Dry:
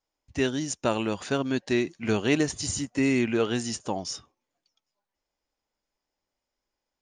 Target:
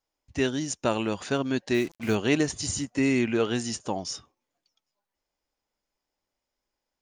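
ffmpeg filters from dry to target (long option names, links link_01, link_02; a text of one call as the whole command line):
ffmpeg -i in.wav -filter_complex "[0:a]asettb=1/sr,asplit=3[link_01][link_02][link_03];[link_01]atrim=end=1.744[link_04];[link_02]atrim=start=1.74:end=2.15,asetpts=PTS-STARTPTS,afade=type=in:duration=0.004:curve=qsin,afade=type=out:start_time=0.406:duration=0.004:curve=qsin,acrusher=bits=6:mix=0:aa=0.5[link_05];[link_03]atrim=start=2.146[link_06];[link_04][link_05]acrossfade=duration=0.004:curve1=hsin:curve2=qsin[link_07];[link_07][link_06]acrossfade=duration=0.004:curve1=qsin:curve2=hsin" out.wav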